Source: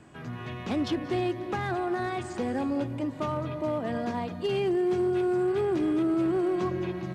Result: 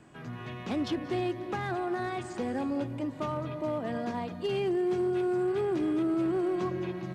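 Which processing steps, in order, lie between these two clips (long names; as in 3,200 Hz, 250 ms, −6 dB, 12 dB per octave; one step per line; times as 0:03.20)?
parametric band 80 Hz −12 dB 0.21 octaves
level −2.5 dB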